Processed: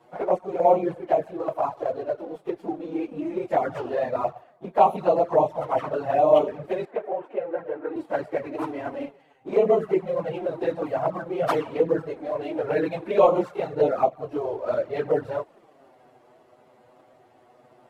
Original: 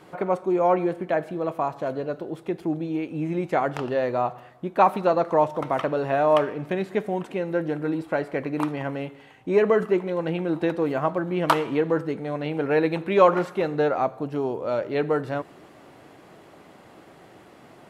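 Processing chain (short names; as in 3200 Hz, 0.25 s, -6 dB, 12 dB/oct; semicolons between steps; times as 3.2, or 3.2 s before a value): phase scrambler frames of 50 ms; sample leveller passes 1; bell 650 Hz +10 dB 1.4 oct; envelope flanger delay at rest 8.5 ms, full sweep at -5.5 dBFS; 6.85–7.96 three-band isolator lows -16 dB, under 310 Hz, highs -19 dB, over 2600 Hz; gain -8 dB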